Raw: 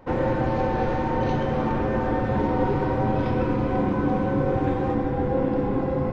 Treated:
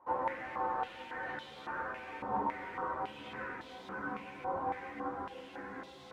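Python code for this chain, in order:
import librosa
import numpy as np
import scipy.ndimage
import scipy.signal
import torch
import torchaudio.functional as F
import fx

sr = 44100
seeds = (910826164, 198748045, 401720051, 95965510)

p1 = fx.tilt_eq(x, sr, slope=-1.5)
p2 = fx.quant_dither(p1, sr, seeds[0], bits=6, dither='none')
p3 = p1 + F.gain(torch.from_numpy(p2), -8.5).numpy()
p4 = fx.chorus_voices(p3, sr, voices=4, hz=0.37, base_ms=13, depth_ms=2.8, mix_pct=50)
p5 = fx.filter_held_bandpass(p4, sr, hz=3.6, low_hz=990.0, high_hz=3600.0)
y = F.gain(torch.from_numpy(p5), 1.0).numpy()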